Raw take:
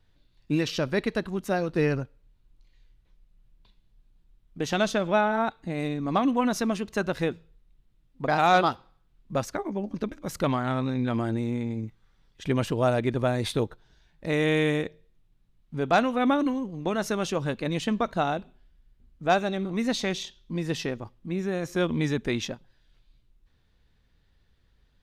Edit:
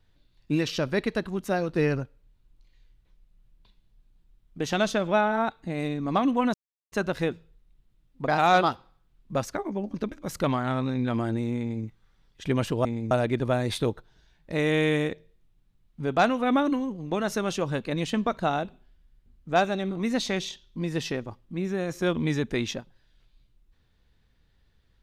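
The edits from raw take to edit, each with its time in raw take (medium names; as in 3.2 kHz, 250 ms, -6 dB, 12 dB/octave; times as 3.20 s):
6.54–6.92 s: mute
11.59–11.85 s: copy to 12.85 s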